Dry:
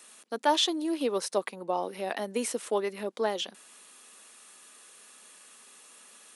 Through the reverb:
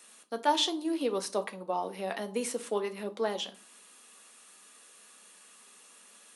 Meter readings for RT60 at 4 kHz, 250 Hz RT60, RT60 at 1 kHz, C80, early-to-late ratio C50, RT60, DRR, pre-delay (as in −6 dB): 0.30 s, 0.55 s, 0.40 s, 22.5 dB, 17.5 dB, 0.40 s, 7.0 dB, 4 ms